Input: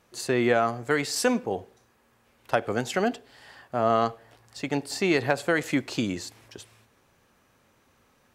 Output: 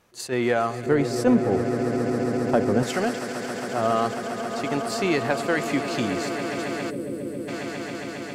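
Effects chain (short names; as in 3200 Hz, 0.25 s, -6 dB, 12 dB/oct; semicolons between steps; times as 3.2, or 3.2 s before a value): swelling echo 0.136 s, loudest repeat 8, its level -14 dB; 6.9–7.48 spectral gain 610–7700 Hz -16 dB; in parallel at -7 dB: soft clip -23.5 dBFS, distortion -9 dB; 0.86–2.83 on the sum: tilt shelf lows +8.5 dB, about 900 Hz; attack slew limiter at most 310 dB/s; gain -2 dB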